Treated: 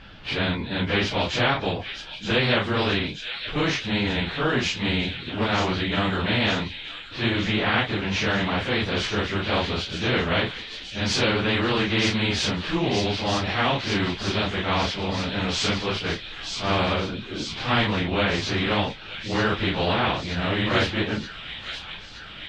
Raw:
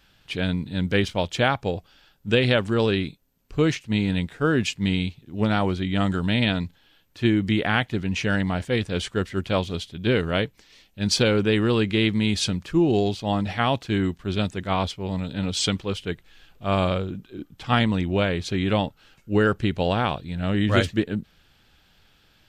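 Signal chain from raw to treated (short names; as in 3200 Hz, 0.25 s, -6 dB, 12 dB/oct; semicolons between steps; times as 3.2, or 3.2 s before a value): phase scrambler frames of 0.1 s; air absorption 240 m; thin delay 0.924 s, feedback 68%, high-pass 4700 Hz, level -6 dB; spectral compressor 2:1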